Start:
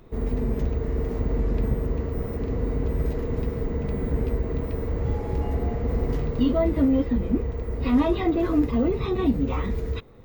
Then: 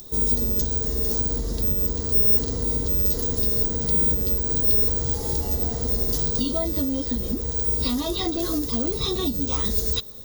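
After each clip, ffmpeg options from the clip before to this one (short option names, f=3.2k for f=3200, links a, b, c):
-af "acompressor=threshold=-23dB:ratio=6,aexciter=amount=10.8:drive=9.3:freq=3.8k"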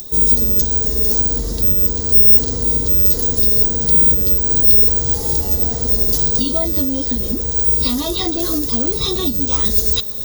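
-af "highshelf=f=4.4k:g=5.5,areverse,acompressor=mode=upward:threshold=-21dB:ratio=2.5,areverse,volume=4dB"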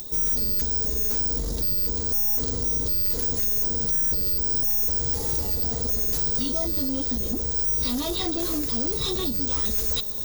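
-af "aeval=exprs='(tanh(7.94*val(0)+0.25)-tanh(0.25))/7.94':c=same,volume=-3.5dB"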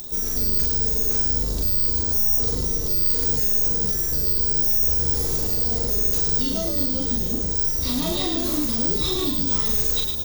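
-filter_complex "[0:a]asplit=2[a][b];[b]adelay=40,volume=-3dB[c];[a][c]amix=inputs=2:normalize=0,asplit=5[d][e][f][g][h];[e]adelay=106,afreqshift=-72,volume=-5.5dB[i];[f]adelay=212,afreqshift=-144,volume=-15.4dB[j];[g]adelay=318,afreqshift=-216,volume=-25.3dB[k];[h]adelay=424,afreqshift=-288,volume=-35.2dB[l];[d][i][j][k][l]amix=inputs=5:normalize=0"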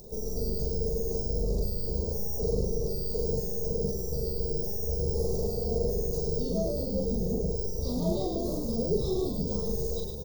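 -af "firequalizer=gain_entry='entry(130,0);entry(190,6);entry(290,-11);entry(420,9);entry(1500,-27);entry(2700,-30);entry(4700,-9);entry(8700,-15)':delay=0.05:min_phase=1,volume=-2.5dB"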